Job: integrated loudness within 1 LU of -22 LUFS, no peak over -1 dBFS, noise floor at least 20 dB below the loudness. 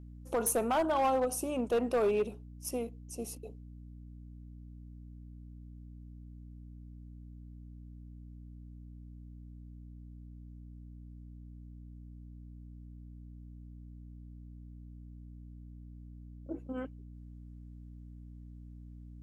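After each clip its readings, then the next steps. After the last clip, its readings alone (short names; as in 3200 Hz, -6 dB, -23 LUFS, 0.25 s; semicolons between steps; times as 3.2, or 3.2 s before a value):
clipped 0.4%; flat tops at -24.0 dBFS; hum 60 Hz; harmonics up to 300 Hz; hum level -46 dBFS; loudness -33.0 LUFS; peak -24.0 dBFS; loudness target -22.0 LUFS
-> clip repair -24 dBFS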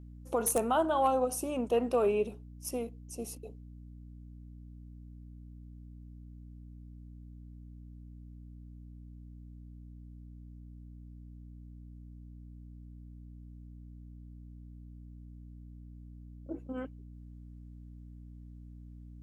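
clipped 0.0%; hum 60 Hz; harmonics up to 300 Hz; hum level -46 dBFS
-> notches 60/120/180/240/300 Hz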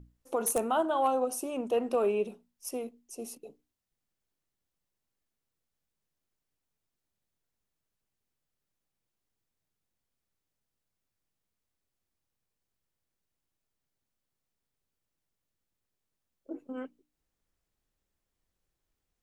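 hum none; loudness -31.0 LUFS; peak -15.0 dBFS; loudness target -22.0 LUFS
-> gain +9 dB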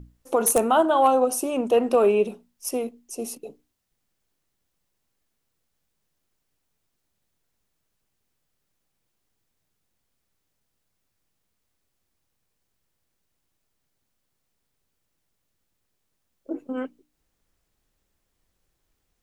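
loudness -22.5 LUFS; peak -6.0 dBFS; noise floor -77 dBFS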